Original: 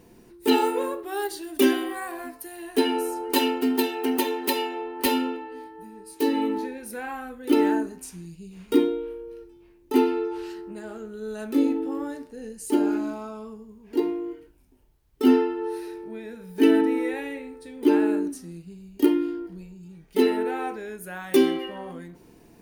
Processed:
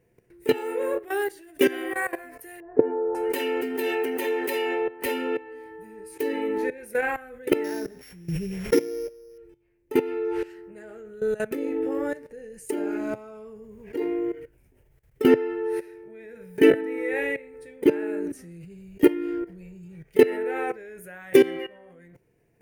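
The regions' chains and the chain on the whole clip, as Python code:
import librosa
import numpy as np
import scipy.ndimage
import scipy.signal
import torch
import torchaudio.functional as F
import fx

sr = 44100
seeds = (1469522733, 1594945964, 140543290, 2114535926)

y = fx.chain(x, sr, fx.lowpass(hz=1100.0, slope=24),
    fx.doubler(ms=25.0, db=-12.5), at=(2.6, 3.15))
y = fx.chain(y, sr, fx.sample_sort(block=8),
    fx.pre_swell(db_per_s=41.0), at=(7.64, 9.38))
y = fx.level_steps(y, sr, step_db=17)
y = fx.graphic_eq(y, sr, hz=(125, 250, 500, 1000, 2000, 4000), db=(10, -8, 9, -7, 11, -9))
y = fx.rider(y, sr, range_db=4, speed_s=0.5)
y = y * 10.0 ** (2.5 / 20.0)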